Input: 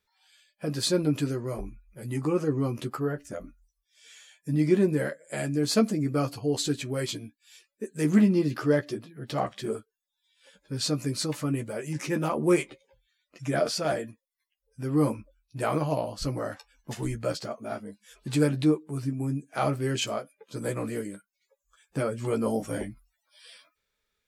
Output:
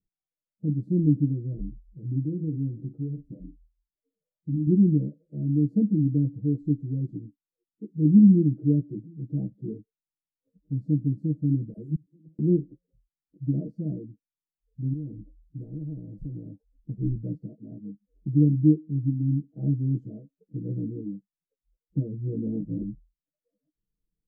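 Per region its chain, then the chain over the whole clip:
0:02.23–0:04.67: downward compressor 2 to 1, threshold −34 dBFS + double-tracking delay 44 ms −11 dB
0:11.73–0:12.39: bass and treble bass +3 dB, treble +15 dB + gate with flip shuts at −17 dBFS, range −35 dB + all-pass dispersion lows, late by 47 ms, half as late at 460 Hz
0:14.93–0:16.48: parametric band 93 Hz +5 dB 2.3 octaves + downward compressor, threshold −27 dBFS + every bin compressed towards the loudest bin 2 to 1
whole clip: inverse Chebyshev low-pass filter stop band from 1,000 Hz, stop band 60 dB; comb filter 6.3 ms, depth 86%; dynamic equaliser 210 Hz, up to +4 dB, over −41 dBFS, Q 2.6; level +1.5 dB

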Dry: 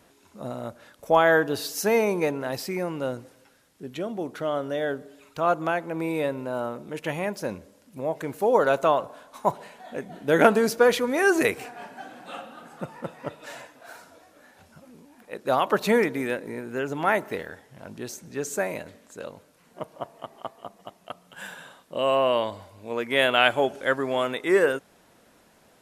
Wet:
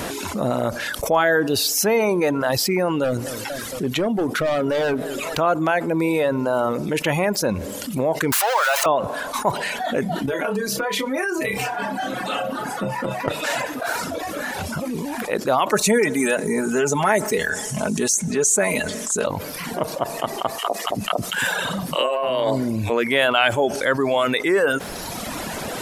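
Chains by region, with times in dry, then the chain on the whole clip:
0:03.04–0:05.39: hard clipping −27 dBFS + feedback echo with a swinging delay time 227 ms, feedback 55%, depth 160 cents, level −20 dB
0:08.32–0:08.86: converter with a step at zero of −22 dBFS + high-pass filter 790 Hz 24 dB per octave
0:10.26–0:13.28: flutter between parallel walls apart 5.2 metres, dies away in 0.23 s + downward compressor, threshold −31 dBFS + stiff-string resonator 64 Hz, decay 0.22 s, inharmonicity 0.008
0:15.71–0:19.27: flat-topped bell 7,700 Hz +12 dB 1 octave + comb filter 4.7 ms, depth 68%
0:20.58–0:22.90: three-band delay without the direct sound highs, mids, lows 50/320 ms, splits 290/880 Hz + compressor whose output falls as the input rises −30 dBFS
whole clip: reverb reduction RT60 0.86 s; envelope flattener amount 70%; level −1 dB

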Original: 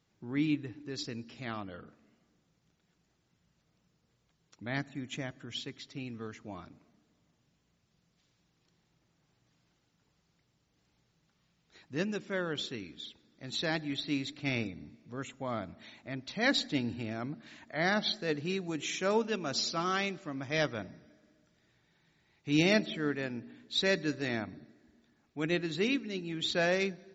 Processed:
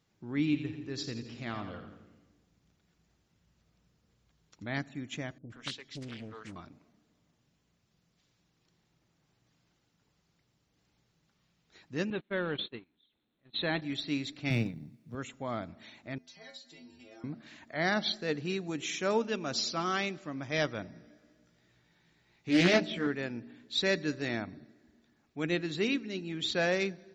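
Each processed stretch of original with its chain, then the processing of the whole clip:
0:00.39–0:04.66: parametric band 60 Hz +6 dB 1.6 octaves + echo with a time of its own for lows and highs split 390 Hz, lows 139 ms, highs 86 ms, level −9 dB
0:05.38–0:06.56: notch filter 360 Hz, Q 9.8 + multiband delay without the direct sound lows, highs 120 ms, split 440 Hz + highs frequency-modulated by the lows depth 0.55 ms
0:12.10–0:13.82: converter with a step at zero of −43 dBFS + noise gate −37 dBFS, range −32 dB + linear-phase brick-wall low-pass 4,300 Hz
0:14.50–0:15.15: mu-law and A-law mismatch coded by A + high-pass filter 100 Hz + parametric band 140 Hz +14 dB 1.3 octaves
0:16.18–0:17.24: bass and treble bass −9 dB, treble +8 dB + downward compressor 5 to 1, threshold −37 dBFS + stiff-string resonator 80 Hz, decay 0.54 s, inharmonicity 0.008
0:20.94–0:23.07: double-tracking delay 17 ms −3 dB + highs frequency-modulated by the lows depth 0.25 ms
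whole clip: no processing

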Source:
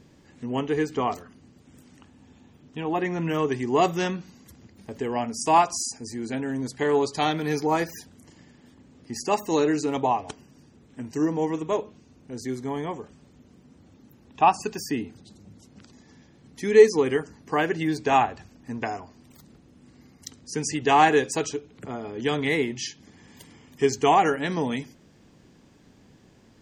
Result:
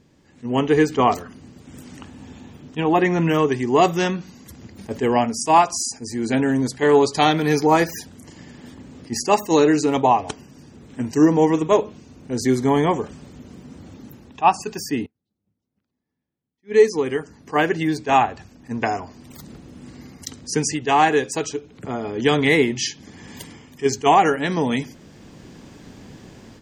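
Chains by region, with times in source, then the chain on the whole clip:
0:15.06–0:16.74: high-frequency loss of the air 170 metres + expander for the loud parts 2.5 to 1, over −50 dBFS
whole clip: automatic gain control gain up to 16 dB; level that may rise only so fast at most 450 dB per second; level −3 dB

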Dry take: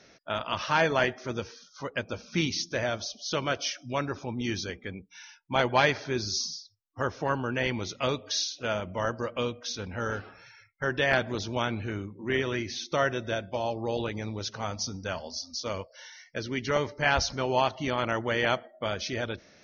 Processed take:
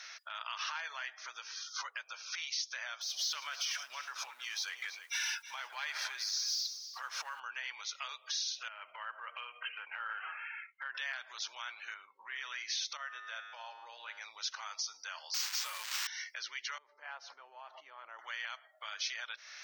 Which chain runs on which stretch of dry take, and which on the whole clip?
0:03.01–0:07.40: mu-law and A-law mismatch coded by mu + downward compressor 2.5 to 1, threshold −42 dBFS + single-tap delay 320 ms −14.5 dB
0:08.68–0:10.95: linear-phase brick-wall low-pass 3,200 Hz + downward compressor 12 to 1, threshold −38 dBFS
0:11.94–0:12.36: Chebyshev low-pass filter 4,800 Hz, order 4 + high-shelf EQ 3,300 Hz −10.5 dB + notch filter 330 Hz, Q 5.7
0:12.97–0:14.21: low-pass filter 2,400 Hz 6 dB per octave + tuned comb filter 54 Hz, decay 1.5 s, harmonics odd, mix 70%
0:15.34–0:16.07: spike at every zero crossing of −29.5 dBFS + comb filter 5.5 ms, depth 80% + bad sample-rate conversion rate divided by 4×, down none, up hold
0:16.78–0:18.19: low-shelf EQ 360 Hz +10.5 dB + downward compressor 8 to 1, threshold −32 dBFS + resonant band-pass 370 Hz, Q 0.92
whole clip: downward compressor 16 to 1, threshold −40 dBFS; brickwall limiter −36.5 dBFS; high-pass filter 1,100 Hz 24 dB per octave; level +10.5 dB

